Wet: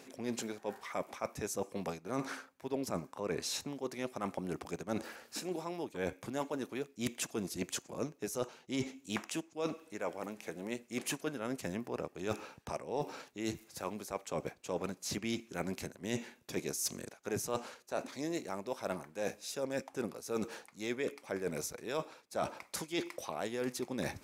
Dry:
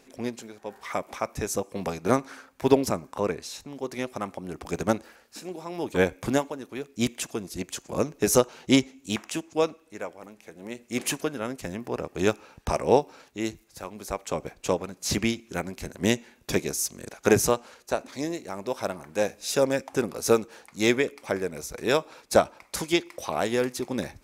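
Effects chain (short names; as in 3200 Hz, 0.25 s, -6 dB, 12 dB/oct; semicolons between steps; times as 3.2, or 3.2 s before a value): HPF 100 Hz; reverse; compressor 12:1, threshold -37 dBFS, peak gain reduction 24.5 dB; reverse; gain +3.5 dB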